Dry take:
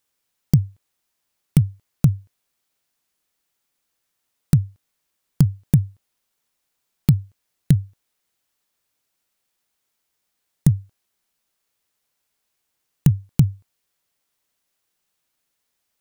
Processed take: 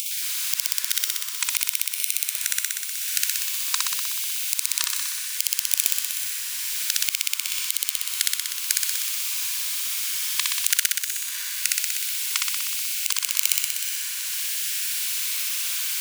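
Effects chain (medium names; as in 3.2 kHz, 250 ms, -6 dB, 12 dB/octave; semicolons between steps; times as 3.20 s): upward compressor, threshold -25 dBFS; brick-wall FIR high-pass 2.1 kHz; echo that smears into a reverb 469 ms, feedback 59%, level -10 dB; ever faster or slower copies 112 ms, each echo -7 st, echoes 2, each echo -6 dB; on a send: flutter echo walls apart 10.6 m, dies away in 1.5 s; on the sum: loudness maximiser +17.5 dB; trim -1 dB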